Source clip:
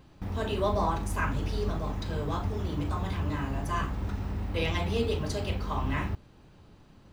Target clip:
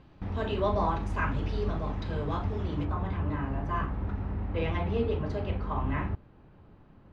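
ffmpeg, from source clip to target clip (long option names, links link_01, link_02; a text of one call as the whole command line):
ffmpeg -i in.wav -af "asetnsamples=nb_out_samples=441:pad=0,asendcmd='2.85 lowpass f 1900',lowpass=3400" out.wav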